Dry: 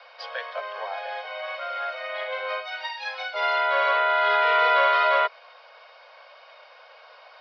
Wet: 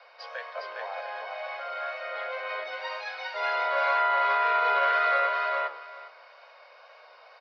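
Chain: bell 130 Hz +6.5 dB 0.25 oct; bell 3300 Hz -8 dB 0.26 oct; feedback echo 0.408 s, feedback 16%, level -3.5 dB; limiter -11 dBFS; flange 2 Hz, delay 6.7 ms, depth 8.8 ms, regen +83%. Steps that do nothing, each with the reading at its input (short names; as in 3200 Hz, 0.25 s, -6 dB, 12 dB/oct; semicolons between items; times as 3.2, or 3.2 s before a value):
bell 130 Hz: input band starts at 400 Hz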